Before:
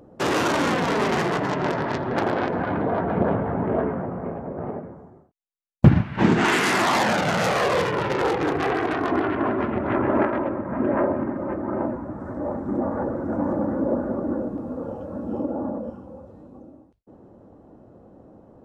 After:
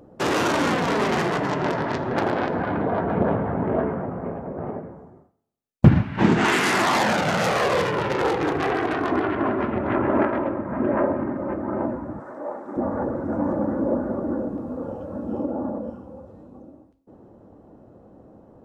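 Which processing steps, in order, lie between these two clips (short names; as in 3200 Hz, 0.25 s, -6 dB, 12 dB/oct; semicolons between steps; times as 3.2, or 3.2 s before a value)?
12.2–12.77 HPF 490 Hz 12 dB/oct; reverb RT60 0.80 s, pre-delay 7 ms, DRR 14 dB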